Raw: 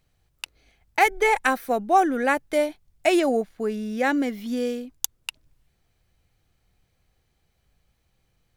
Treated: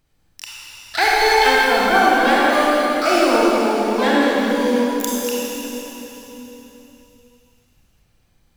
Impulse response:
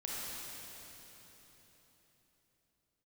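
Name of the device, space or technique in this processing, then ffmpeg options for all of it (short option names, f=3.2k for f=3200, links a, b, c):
shimmer-style reverb: -filter_complex "[0:a]asplit=2[a][b];[b]asetrate=88200,aresample=44100,atempo=0.5,volume=-4dB[c];[a][c]amix=inputs=2:normalize=0[d];[1:a]atrim=start_sample=2205[e];[d][e]afir=irnorm=-1:irlink=0,volume=3.5dB"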